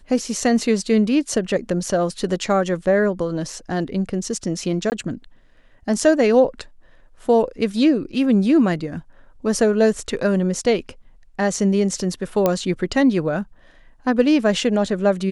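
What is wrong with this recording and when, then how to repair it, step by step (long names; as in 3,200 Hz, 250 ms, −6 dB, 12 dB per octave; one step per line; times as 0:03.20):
0:04.90–0:04.92: drop-out 19 ms
0:12.46: click −5 dBFS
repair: click removal
repair the gap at 0:04.90, 19 ms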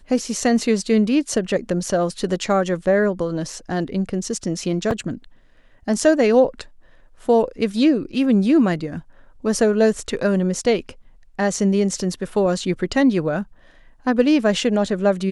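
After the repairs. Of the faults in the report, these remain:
none of them is left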